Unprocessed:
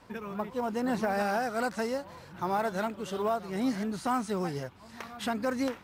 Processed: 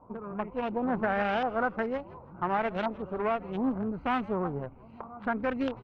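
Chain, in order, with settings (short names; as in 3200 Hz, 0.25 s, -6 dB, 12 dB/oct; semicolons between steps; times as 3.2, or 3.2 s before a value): Wiener smoothing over 25 samples; added harmonics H 6 -23 dB, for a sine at -19 dBFS; LFO low-pass saw up 1.4 Hz 970–3200 Hz; frequency-shifting echo 0.162 s, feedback 44%, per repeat -150 Hz, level -20.5 dB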